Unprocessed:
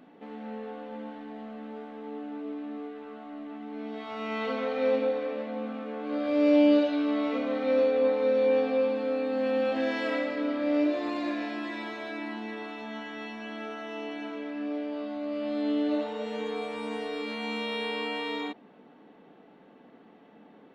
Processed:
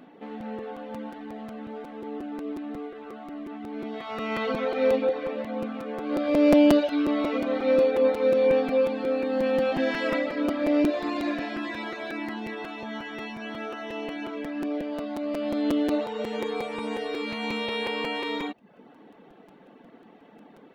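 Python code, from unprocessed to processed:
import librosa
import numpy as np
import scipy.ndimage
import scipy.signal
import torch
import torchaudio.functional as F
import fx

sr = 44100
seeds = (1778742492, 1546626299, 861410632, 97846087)

y = fx.dereverb_blind(x, sr, rt60_s=0.56)
y = fx.buffer_crackle(y, sr, first_s=0.4, period_s=0.18, block=256, kind='repeat')
y = F.gain(torch.from_numpy(y), 4.5).numpy()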